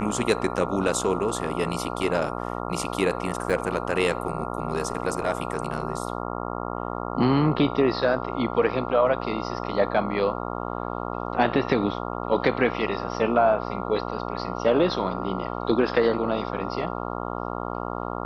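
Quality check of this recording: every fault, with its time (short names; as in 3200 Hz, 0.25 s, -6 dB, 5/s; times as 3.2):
buzz 60 Hz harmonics 23 -31 dBFS
3.5 gap 3.3 ms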